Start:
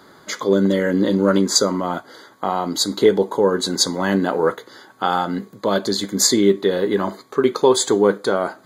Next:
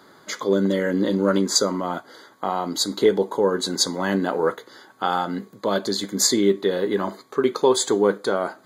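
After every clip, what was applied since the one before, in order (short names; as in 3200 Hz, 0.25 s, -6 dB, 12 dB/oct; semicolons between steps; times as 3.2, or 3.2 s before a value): low shelf 67 Hz -11 dB; gain -3 dB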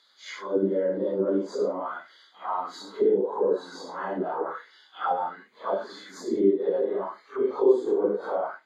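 phase scrambler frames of 0.2 s; auto-wah 350–4000 Hz, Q 2.4, down, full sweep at -15.5 dBFS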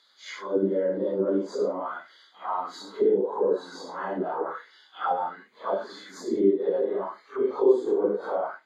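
nothing audible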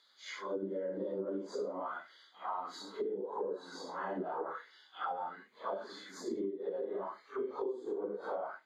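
compressor 16:1, threshold -28 dBFS, peak gain reduction 16 dB; gain -5.5 dB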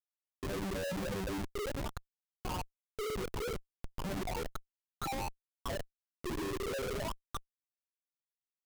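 high-pass sweep 180 Hz -> 2000 Hz, 6.35–7.61; loudest bins only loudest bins 4; Schmitt trigger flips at -39.5 dBFS; gain +4.5 dB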